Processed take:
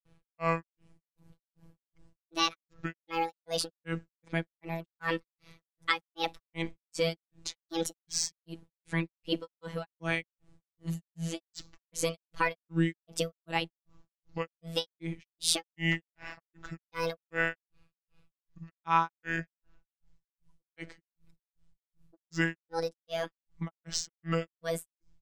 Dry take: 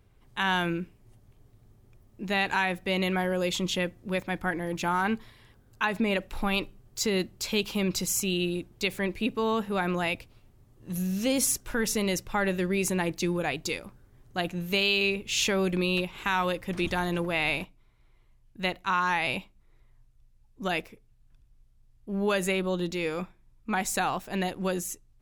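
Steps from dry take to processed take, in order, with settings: resampled via 22.05 kHz; granulator 244 ms, grains 2.6 per s, pitch spread up and down by 7 st; robot voice 165 Hz; trim +3 dB

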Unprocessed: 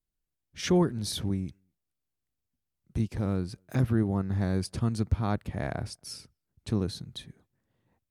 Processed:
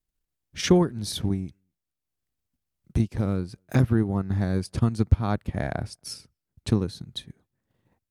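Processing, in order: transient shaper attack +6 dB, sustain -4 dB; trim +2 dB

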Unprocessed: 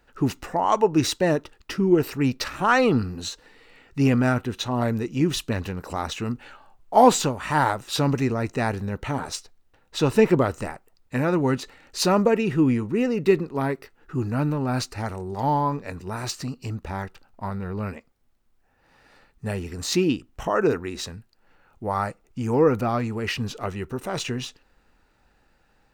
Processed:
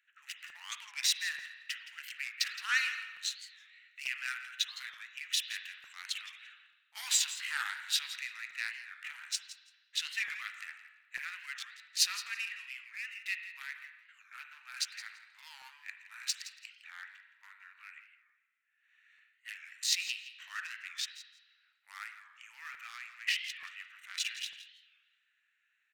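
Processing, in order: local Wiener filter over 9 samples; steep high-pass 1.8 kHz 36 dB/octave; on a send: feedback delay 168 ms, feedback 16%, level -14.5 dB; on the sum: spring tank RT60 1.3 s, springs 34/51 ms, chirp 70 ms, DRR 6.5 dB; crackling interface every 0.89 s, samples 256, repeat, from 0.49 s; warped record 45 rpm, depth 160 cents; trim -1 dB

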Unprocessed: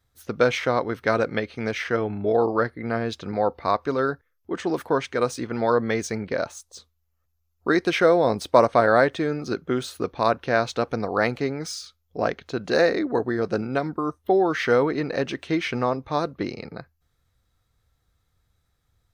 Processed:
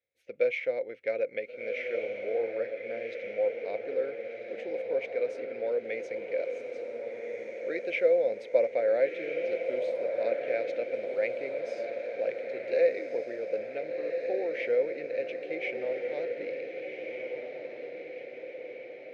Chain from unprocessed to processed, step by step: two resonant band-passes 1.1 kHz, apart 2.1 oct; echo that smears into a reverb 1462 ms, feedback 56%, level -5 dB; trim -2 dB

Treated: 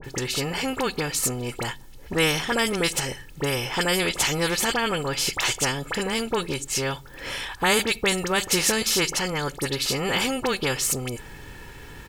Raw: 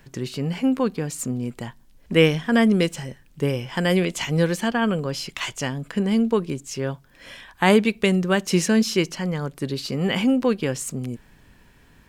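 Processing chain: comb 2.3 ms, depth 54%; phase dispersion highs, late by 42 ms, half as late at 1.9 kHz; spectrum-flattening compressor 2:1; trim -4.5 dB

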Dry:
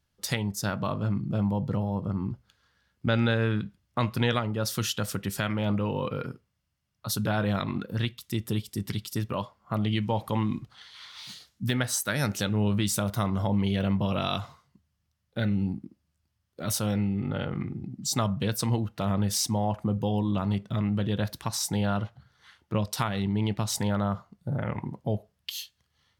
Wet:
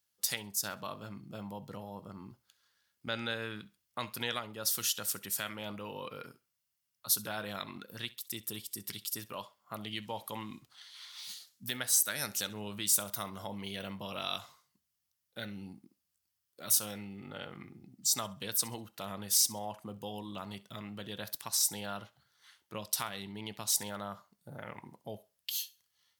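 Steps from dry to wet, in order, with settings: RIAA curve recording; thinning echo 66 ms, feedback 26%, level -20 dB; trim -9 dB

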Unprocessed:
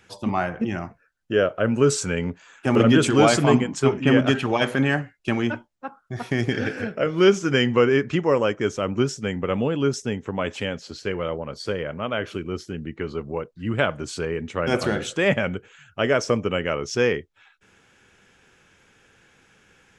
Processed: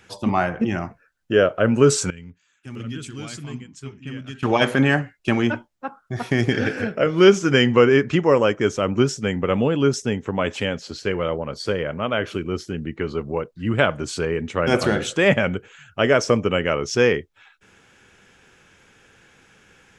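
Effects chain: 2.10–4.43 s: amplifier tone stack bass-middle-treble 6-0-2; trim +3.5 dB

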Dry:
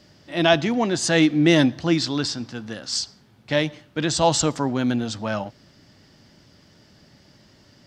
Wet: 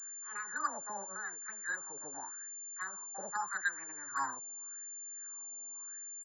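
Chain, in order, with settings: in parallel at -8.5 dB: saturation -17 dBFS, distortion -10 dB; on the sum: bands offset in time highs, lows 40 ms, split 580 Hz; tape speed +26%; compression 12:1, threshold -21 dBFS, peak gain reduction 10.5 dB; wah-wah 0.85 Hz 500–2000 Hz, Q 6.1; formant shift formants +5 st; FFT filter 320 Hz 0 dB, 620 Hz -8 dB, 1.7 kHz +15 dB, 2.5 kHz -25 dB; class-D stage that switches slowly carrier 7.2 kHz; trim -3 dB

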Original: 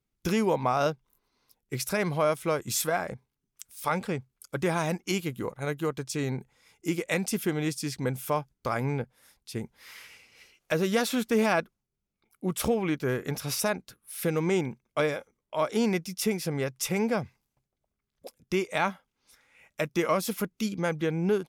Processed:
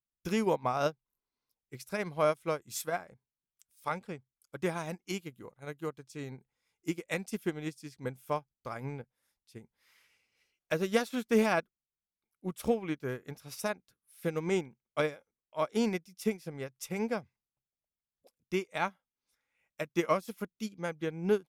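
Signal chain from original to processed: upward expansion 2.5:1, over -34 dBFS

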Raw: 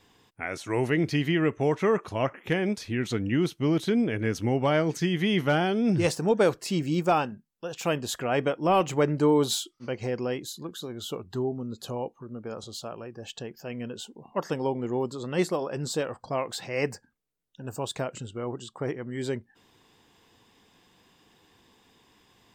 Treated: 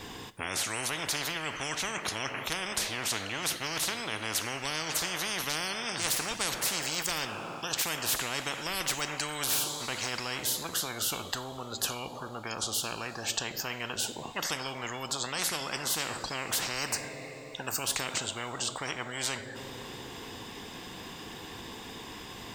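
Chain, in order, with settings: two-slope reverb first 0.44 s, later 3.4 s, from -18 dB, DRR 13.5 dB; spectrum-flattening compressor 10:1

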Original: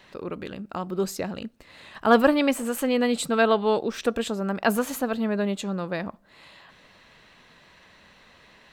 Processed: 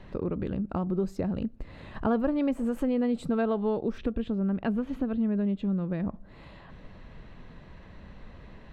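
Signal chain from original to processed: tilt EQ -4.5 dB/octave; compression 3:1, threshold -28 dBFS, peak gain reduction 16 dB; 3.98–6.03 s: FFT filter 270 Hz 0 dB, 750 Hz -6 dB, 3.2 kHz +1 dB, 7.6 kHz -16 dB

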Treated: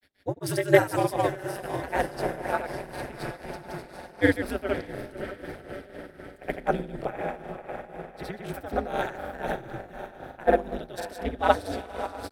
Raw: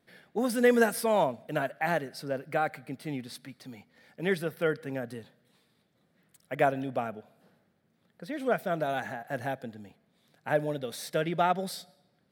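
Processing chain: on a send: echo that smears into a reverb 588 ms, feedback 65%, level -7 dB; on the sum: ring modulator 100 Hz; granulator, pitch spread up and down by 0 st; tremolo 4 Hz, depth 72%; in parallel at +2 dB: gain riding within 5 dB 2 s; on the sum: three bands expanded up and down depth 40%

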